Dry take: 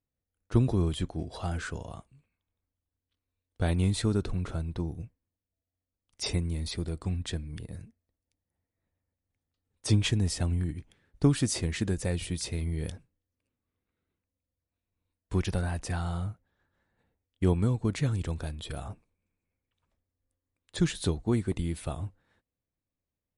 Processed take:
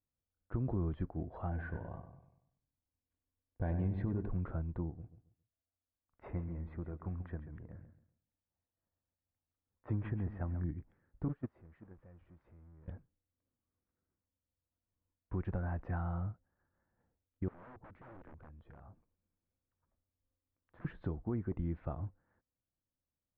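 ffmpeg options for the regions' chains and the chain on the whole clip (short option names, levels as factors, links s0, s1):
-filter_complex "[0:a]asettb=1/sr,asplit=3[s0][s1][s2];[s0]atrim=end=1.494[s3];[s1]atrim=start=1.49:end=4.29,asetpts=PTS-STARTPTS,afade=t=in:d=0.004:c=qsin,afade=t=out:st=2.796:d=0.004:c=qsin,asuperstop=centerf=1300:order=4:qfactor=4.7,asplit=2[s4][s5];[s5]adelay=96,lowpass=f=2400:p=1,volume=0.376,asplit=2[s6][s7];[s7]adelay=96,lowpass=f=2400:p=1,volume=0.5,asplit=2[s8][s9];[s9]adelay=96,lowpass=f=2400:p=1,volume=0.5,asplit=2[s10][s11];[s11]adelay=96,lowpass=f=2400:p=1,volume=0.5,asplit=2[s12][s13];[s13]adelay=96,lowpass=f=2400:p=1,volume=0.5,asplit=2[s14][s15];[s15]adelay=96,lowpass=f=2400:p=1,volume=0.5[s16];[s4][s6][s8][s10][s12][s14][s16]amix=inputs=7:normalize=0,atrim=end_sample=123480[s17];[s2]atrim=start=4.286[s18];[s3][s17]acrossfade=d=0.004:c1=hsin:c2=qsin[s19];[s19][s18]acrossfade=d=0.004:c1=qsin:c2=hsin,asettb=1/sr,asplit=3[s20][s21][s22];[s20]atrim=end=4.904[s23];[s21]atrim=start=4.9:end=10.64,asetpts=PTS-STARTPTS,afade=t=in:d=0.004:c=qsin,afade=t=out:st=5.736:d=0.004:c=qsin,lowpass=1600,tiltshelf=f=850:g=-5,aecho=1:1:136|272|408:0.266|0.0692|0.018,atrim=end_sample=253134[s24];[s22]atrim=start=10.636[s25];[s23][s24]acrossfade=d=0.004:c1=hsin:c2=qsin[s26];[s26][s25]acrossfade=d=0.004:c1=qsin:c2=hsin,asettb=1/sr,asplit=3[s27][s28][s29];[s27]atrim=end=11.284[s30];[s28]atrim=start=11.28:end=12.88,asetpts=PTS-STARTPTS,afade=t=in:d=0.004:c=qsin,afade=t=out:st=1.596:d=0.004:c=qsin,aeval=exprs='val(0)+0.5*0.0376*sgn(val(0))':c=same,agate=range=0.0501:threshold=0.0891:ratio=16:release=100:detection=peak[s31];[s29]atrim=start=12.876[s32];[s30][s31]acrossfade=d=0.004:c1=hsin:c2=qsin[s33];[s33][s32]acrossfade=d=0.004:c1=qsin:c2=hsin,asettb=1/sr,asplit=3[s34][s35][s36];[s34]atrim=end=17.484[s37];[s35]atrim=start=17.48:end=20.85,asetpts=PTS-STARTPTS,afade=t=in:d=0.004:c=qsin,afade=t=out:st=3.366:d=0.004:c=qsin,aeval=exprs='(mod(26.6*val(0)+1,2)-1)/26.6':c=same,acompressor=threshold=0.00355:ratio=4:attack=3.2:release=140:knee=1:detection=peak[s38];[s36]atrim=start=20.846[s39];[s37][s38]acrossfade=d=0.004:c1=hsin:c2=qsin[s40];[s40][s39]acrossfade=d=0.004:c1=qsin:c2=hsin,lowpass=f=1600:w=0.5412,lowpass=f=1600:w=1.3066,bandreject=f=430:w=12,alimiter=limit=0.0841:level=0:latency=1:release=148,volume=0.562"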